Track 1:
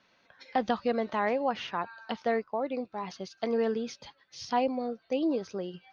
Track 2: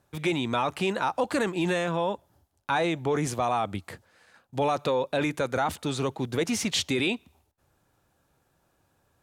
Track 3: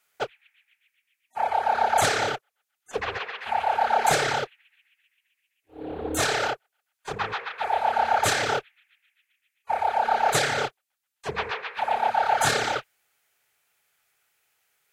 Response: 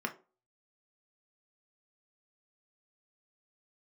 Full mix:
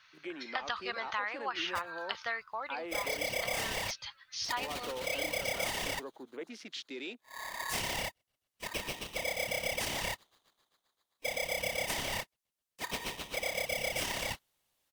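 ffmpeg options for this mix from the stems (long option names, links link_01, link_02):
-filter_complex "[0:a]firequalizer=gain_entry='entry(120,0);entry(220,-23);entry(1200,8)':delay=0.05:min_phase=1,volume=-1.5dB[link_01];[1:a]afwtdn=0.0178,highpass=frequency=270:width=0.5412,highpass=frequency=270:width=1.3066,volume=-14.5dB[link_02];[2:a]highpass=190,aeval=exprs='val(0)*sgn(sin(2*PI*1400*n/s))':channel_layout=same,adelay=1550,volume=-7.5dB[link_03];[link_01][link_02][link_03]amix=inputs=3:normalize=0,acompressor=threshold=-31dB:ratio=6"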